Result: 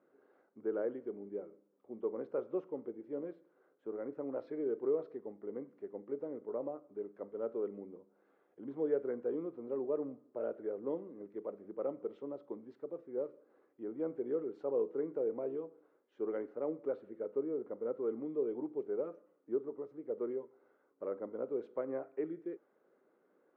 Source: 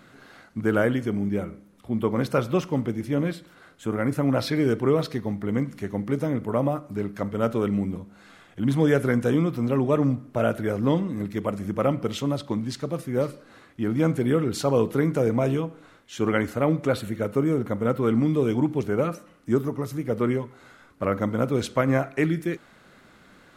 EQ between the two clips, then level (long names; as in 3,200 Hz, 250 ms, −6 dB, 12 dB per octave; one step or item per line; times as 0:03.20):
four-pole ladder band-pass 480 Hz, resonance 50%
notch filter 680 Hz, Q 18
−4.5 dB